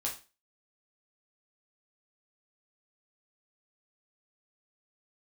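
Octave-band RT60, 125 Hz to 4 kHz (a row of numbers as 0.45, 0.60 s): 0.30, 0.35, 0.35, 0.30, 0.30, 0.30 s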